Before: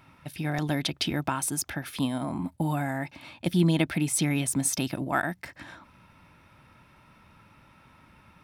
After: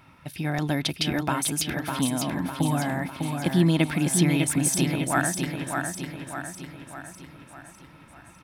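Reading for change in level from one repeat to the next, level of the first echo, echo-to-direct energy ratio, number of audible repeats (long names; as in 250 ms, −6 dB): −5.5 dB, −5.0 dB, −3.5 dB, 6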